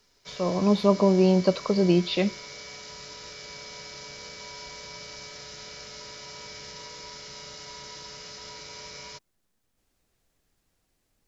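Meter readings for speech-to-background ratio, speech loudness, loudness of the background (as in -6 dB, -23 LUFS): 17.0 dB, -23.0 LUFS, -40.0 LUFS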